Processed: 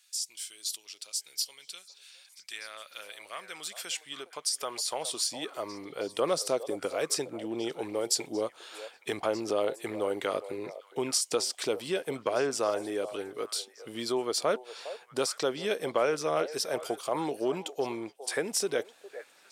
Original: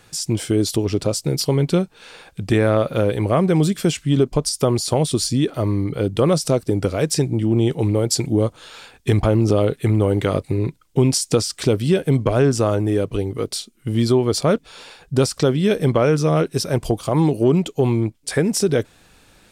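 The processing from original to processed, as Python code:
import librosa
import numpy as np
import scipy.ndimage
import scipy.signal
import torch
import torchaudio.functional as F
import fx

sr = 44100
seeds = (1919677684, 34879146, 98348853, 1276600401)

y = fx.echo_stepped(x, sr, ms=409, hz=630.0, octaves=1.4, feedback_pct=70, wet_db=-11.0)
y = fx.filter_sweep_highpass(y, sr, from_hz=3500.0, to_hz=520.0, start_s=2.19, end_s=6.14, q=0.72)
y = y * librosa.db_to_amplitude(-6.5)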